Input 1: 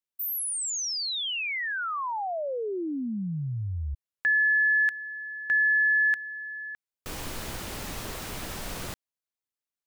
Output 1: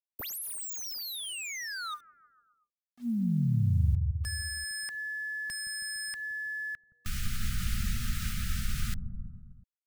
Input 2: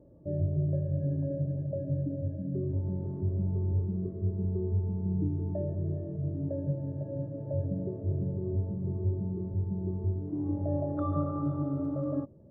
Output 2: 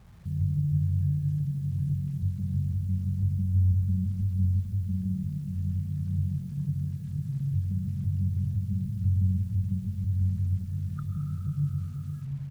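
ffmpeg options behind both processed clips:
ffmpeg -i in.wav -filter_complex "[0:a]afftfilt=real='re*(1-between(b*sr/4096,240,1200))':imag='im*(1-between(b*sr/4096,240,1200))':win_size=4096:overlap=0.75,lowshelf=frequency=120:gain=11,asplit=2[link_01][link_02];[link_02]acompressor=threshold=-32dB:ratio=8:attack=4.4:release=118:knee=1:detection=rms,volume=3dB[link_03];[link_01][link_03]amix=inputs=2:normalize=0,acrusher=bits=8:mix=0:aa=0.000001,acrossover=split=680[link_04][link_05];[link_04]aecho=1:1:170|323|460.7|584.6|696.2:0.631|0.398|0.251|0.158|0.1[link_06];[link_05]aeval=exprs='0.0447*(abs(mod(val(0)/0.0447+3,4)-2)-1)':channel_layout=same[link_07];[link_06][link_07]amix=inputs=2:normalize=0,volume=-6dB" out.wav

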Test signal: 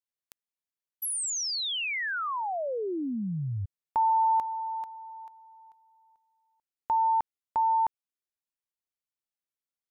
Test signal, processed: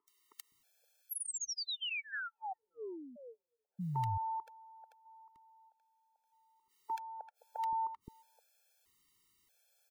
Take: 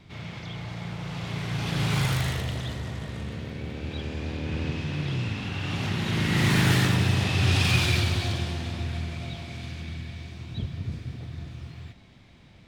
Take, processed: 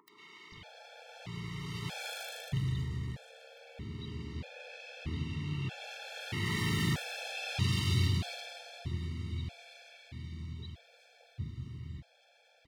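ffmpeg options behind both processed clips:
ffmpeg -i in.wav -filter_complex "[0:a]acompressor=mode=upward:threshold=-47dB:ratio=2.5:attack=29:release=43:knee=2.83:detection=peak,acrossover=split=370|1200[link_01][link_02][link_03];[link_03]adelay=80[link_04];[link_01]adelay=520[link_05];[link_05][link_02][link_04]amix=inputs=3:normalize=0,afftfilt=real='re*gt(sin(2*PI*0.79*pts/sr)*(1-2*mod(floor(b*sr/1024/450),2)),0)':imag='im*gt(sin(2*PI*0.79*pts/sr)*(1-2*mod(floor(b*sr/1024/450),2)),0)':win_size=1024:overlap=0.75,volume=-6dB" out.wav

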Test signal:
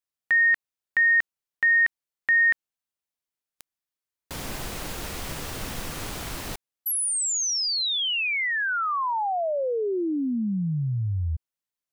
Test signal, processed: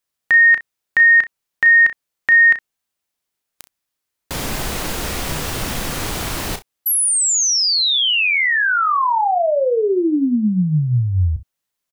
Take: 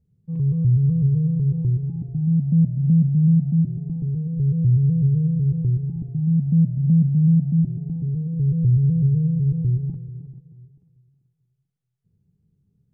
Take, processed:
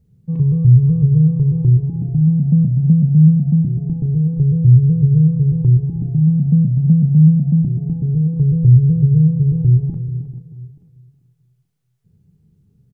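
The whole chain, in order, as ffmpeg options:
ffmpeg -i in.wav -filter_complex "[0:a]asplit=2[link_01][link_02];[link_02]acompressor=threshold=-26dB:ratio=6:attack=1.4:release=179:knee=6:detection=peak,volume=-1dB[link_03];[link_01][link_03]amix=inputs=2:normalize=0,aecho=1:1:33|64:0.335|0.126,volume=4.5dB" out.wav

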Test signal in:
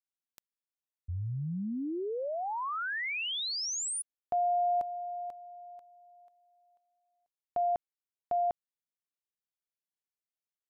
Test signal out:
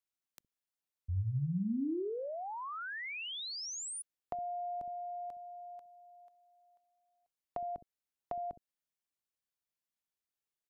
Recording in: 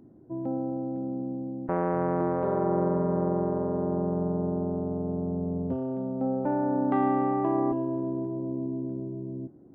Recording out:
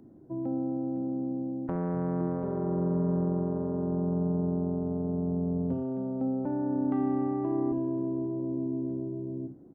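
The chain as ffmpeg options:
ffmpeg -i in.wav -filter_complex "[0:a]acrossover=split=340[link_01][link_02];[link_01]aecho=1:1:22|64:0.141|0.473[link_03];[link_02]acompressor=threshold=-44dB:ratio=6:attack=66:release=34:knee=1:detection=rms[link_04];[link_03][link_04]amix=inputs=2:normalize=0" out.wav

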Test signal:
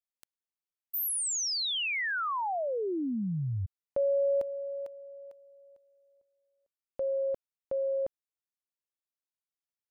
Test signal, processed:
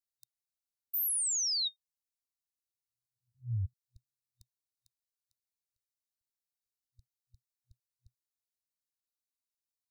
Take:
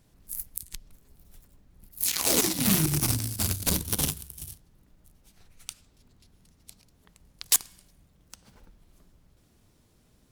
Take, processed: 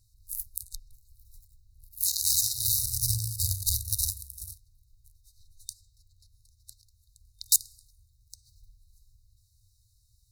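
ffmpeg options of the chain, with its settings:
ffmpeg -i in.wav -af "afftfilt=real='re*(1-between(b*sr/4096,120,3700))':imag='im*(1-between(b*sr/4096,120,3700))':win_size=4096:overlap=0.75" out.wav

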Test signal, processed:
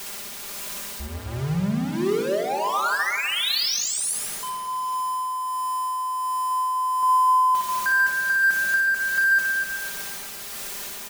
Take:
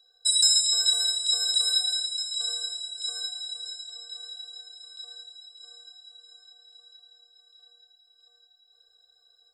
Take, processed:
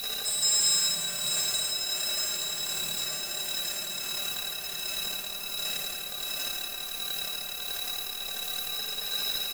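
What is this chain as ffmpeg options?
ffmpeg -i in.wav -filter_complex "[0:a]aeval=exprs='val(0)+0.5*0.0891*sgn(val(0))':channel_layout=same,asplit=2[link_01][link_02];[link_02]aecho=0:1:60|138|239.4|371.2|542.6:0.631|0.398|0.251|0.158|0.1[link_03];[link_01][link_03]amix=inputs=2:normalize=0,tremolo=f=1.4:d=0.33,aecho=1:1:5:0.72,asplit=2[link_04][link_05];[link_05]adelay=252,lowpass=frequency=2000:poles=1,volume=-6.5dB,asplit=2[link_06][link_07];[link_07]adelay=252,lowpass=frequency=2000:poles=1,volume=0.38,asplit=2[link_08][link_09];[link_09]adelay=252,lowpass=frequency=2000:poles=1,volume=0.38,asplit=2[link_10][link_11];[link_11]adelay=252,lowpass=frequency=2000:poles=1,volume=0.38[link_12];[link_06][link_08][link_10][link_12]amix=inputs=4:normalize=0[link_13];[link_04][link_13]amix=inputs=2:normalize=0,volume=-6.5dB" out.wav

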